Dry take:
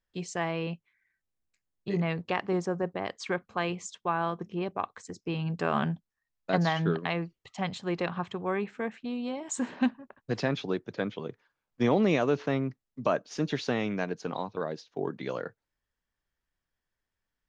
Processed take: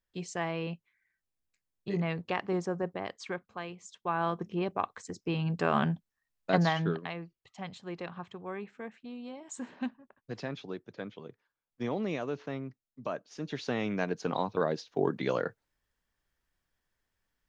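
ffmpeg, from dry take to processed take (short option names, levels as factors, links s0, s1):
-af "volume=15,afade=t=out:st=2.88:d=0.91:silence=0.316228,afade=t=in:st=3.79:d=0.52:silence=0.223872,afade=t=out:st=6.6:d=0.54:silence=0.334965,afade=t=in:st=13.41:d=1.18:silence=0.223872"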